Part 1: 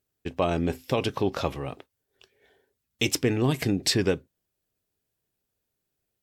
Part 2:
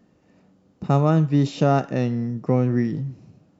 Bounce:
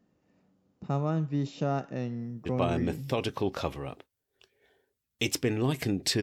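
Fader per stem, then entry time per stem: -4.0, -11.0 dB; 2.20, 0.00 s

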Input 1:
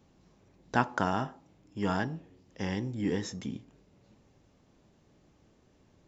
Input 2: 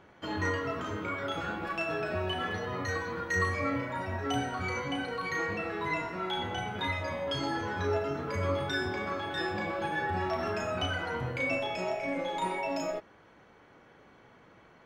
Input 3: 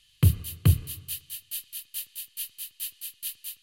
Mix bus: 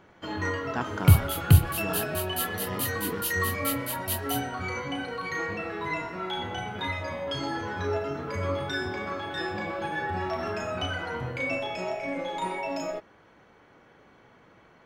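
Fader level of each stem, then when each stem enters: -5.0, +1.0, +3.0 dB; 0.00, 0.00, 0.85 s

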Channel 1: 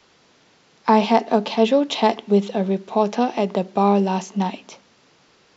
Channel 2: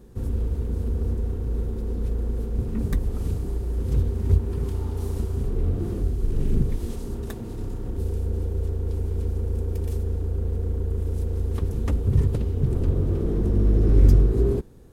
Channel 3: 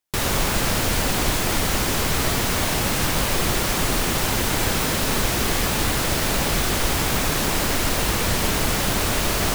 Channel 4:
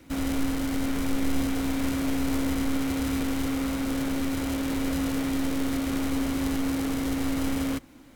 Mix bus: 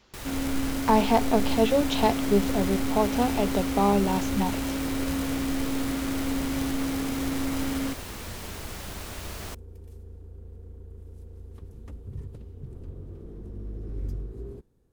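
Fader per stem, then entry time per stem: -5.5, -18.0, -17.0, -1.5 dB; 0.00, 0.00, 0.00, 0.15 s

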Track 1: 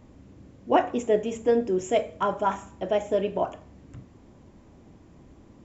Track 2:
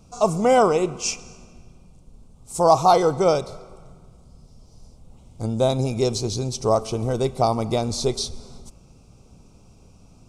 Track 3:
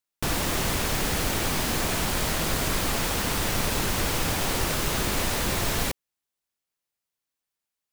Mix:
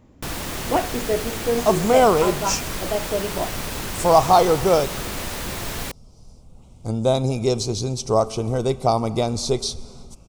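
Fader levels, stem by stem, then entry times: -0.5, +1.0, -3.0 dB; 0.00, 1.45, 0.00 s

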